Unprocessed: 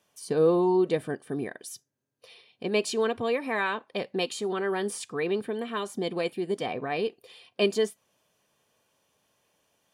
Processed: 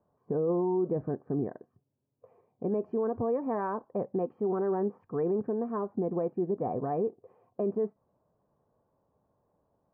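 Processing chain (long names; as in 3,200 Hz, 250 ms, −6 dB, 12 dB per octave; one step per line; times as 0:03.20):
inverse Chebyshev low-pass filter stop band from 3,500 Hz, stop band 60 dB
low-shelf EQ 130 Hz +10 dB
brickwall limiter −21.5 dBFS, peak gain reduction 10 dB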